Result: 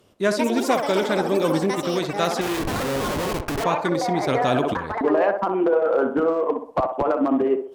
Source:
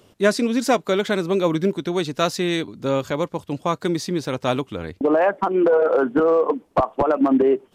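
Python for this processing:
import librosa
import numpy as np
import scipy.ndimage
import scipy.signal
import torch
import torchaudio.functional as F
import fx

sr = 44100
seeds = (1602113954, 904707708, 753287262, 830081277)

p1 = fx.level_steps(x, sr, step_db=13)
p2 = x + (p1 * librosa.db_to_amplitude(2.0))
p3 = fx.echo_pitch(p2, sr, ms=233, semitones=7, count=3, db_per_echo=-6.0)
p4 = fx.schmitt(p3, sr, flips_db=-23.0, at=(2.41, 3.64))
p5 = p4 + fx.echo_banded(p4, sr, ms=64, feedback_pct=47, hz=670.0, wet_db=-5.0, dry=0)
p6 = fx.cheby_harmonics(p5, sr, harmonics=(7,), levels_db=(-38,), full_scale_db=-1.5)
p7 = fx.env_flatten(p6, sr, amount_pct=70, at=(4.28, 4.74))
y = p7 * librosa.db_to_amplitude(-6.5)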